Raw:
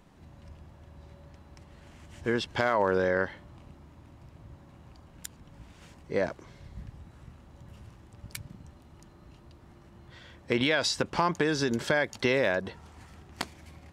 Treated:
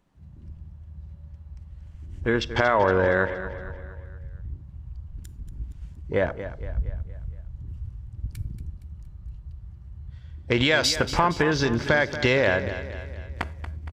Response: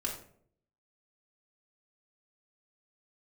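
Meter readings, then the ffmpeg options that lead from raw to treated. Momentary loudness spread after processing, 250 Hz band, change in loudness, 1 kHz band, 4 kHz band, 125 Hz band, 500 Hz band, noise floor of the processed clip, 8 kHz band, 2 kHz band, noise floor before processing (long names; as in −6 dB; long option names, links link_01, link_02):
23 LU, +4.0 dB, +4.0 dB, +5.5 dB, +5.5 dB, +9.5 dB, +5.0 dB, −46 dBFS, +4.5 dB, +6.0 dB, −55 dBFS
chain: -filter_complex "[0:a]afwtdn=0.00891,asubboost=boost=5.5:cutoff=86,aecho=1:1:233|466|699|932|1165:0.251|0.123|0.0603|0.0296|0.0145,asplit=2[link_01][link_02];[1:a]atrim=start_sample=2205,highshelf=frequency=11000:gain=10.5[link_03];[link_02][link_03]afir=irnorm=-1:irlink=0,volume=-18dB[link_04];[link_01][link_04]amix=inputs=2:normalize=0,volume=5dB"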